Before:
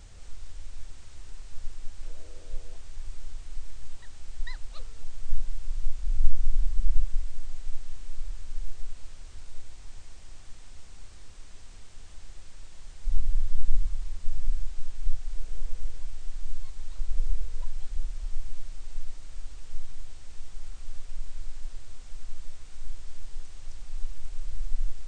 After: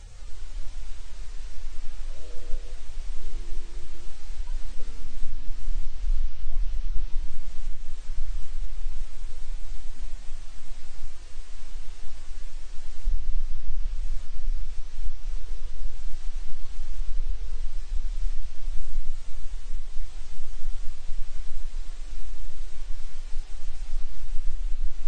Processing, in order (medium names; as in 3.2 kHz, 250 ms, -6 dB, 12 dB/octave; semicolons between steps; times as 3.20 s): harmonic-percussive separation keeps harmonic; compression 4:1, threshold -22 dBFS, peak gain reduction 13.5 dB; ever faster or slower copies 185 ms, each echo -6 st, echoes 3; trim +6 dB